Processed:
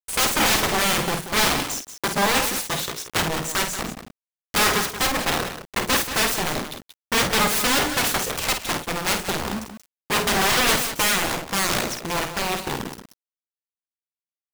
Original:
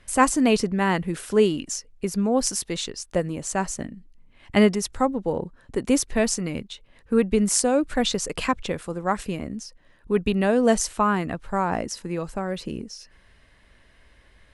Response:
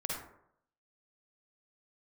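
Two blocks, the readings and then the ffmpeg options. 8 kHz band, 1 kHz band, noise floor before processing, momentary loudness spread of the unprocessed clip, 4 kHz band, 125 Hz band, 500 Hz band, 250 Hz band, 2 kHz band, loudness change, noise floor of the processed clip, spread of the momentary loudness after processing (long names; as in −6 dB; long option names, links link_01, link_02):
+4.5 dB, +3.0 dB, −57 dBFS, 12 LU, +10.5 dB, −1.0 dB, −4.0 dB, −6.0 dB, +8.5 dB, +2.5 dB, below −85 dBFS, 9 LU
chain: -filter_complex "[0:a]highpass=40,highshelf=frequency=2300:gain=-4,bandreject=frequency=60:width_type=h:width=6,bandreject=frequency=120:width_type=h:width=6,bandreject=frequency=180:width_type=h:width=6,bandreject=frequency=240:width_type=h:width=6,bandreject=frequency=300:width_type=h:width=6,bandreject=frequency=360:width_type=h:width=6,bandreject=frequency=420:width_type=h:width=6,bandreject=frequency=480:width_type=h:width=6,bandreject=frequency=540:width_type=h:width=6,bandreject=frequency=600:width_type=h:width=6,acontrast=30,asoftclip=type=tanh:threshold=-9dB,acrusher=bits=4:mix=0:aa=0.000001,aeval=exprs='0.335*sin(PI/2*8.91*val(0)/0.335)':channel_layout=same,asplit=2[link_01][link_02];[link_02]aecho=0:1:50|182:0.422|0.299[link_03];[link_01][link_03]amix=inputs=2:normalize=0,volume=-6.5dB"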